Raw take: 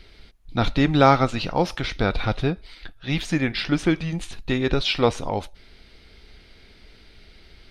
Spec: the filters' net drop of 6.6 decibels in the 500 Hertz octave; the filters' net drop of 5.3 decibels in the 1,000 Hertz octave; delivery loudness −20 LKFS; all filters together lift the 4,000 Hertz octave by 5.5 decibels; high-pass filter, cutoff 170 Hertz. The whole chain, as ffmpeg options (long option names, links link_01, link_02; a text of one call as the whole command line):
ffmpeg -i in.wav -af "highpass=170,equalizer=frequency=500:width_type=o:gain=-7,equalizer=frequency=1000:width_type=o:gain=-5.5,equalizer=frequency=4000:width_type=o:gain=7,volume=4.5dB" out.wav